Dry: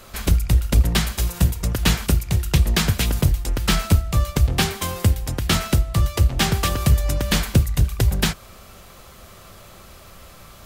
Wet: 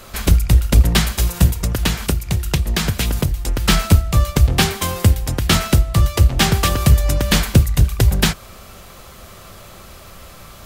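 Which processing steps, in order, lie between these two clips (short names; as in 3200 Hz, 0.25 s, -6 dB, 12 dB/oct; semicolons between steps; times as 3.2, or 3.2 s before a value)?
1.53–3.65 compressor, threshold -19 dBFS, peak gain reduction 8 dB; gain +4.5 dB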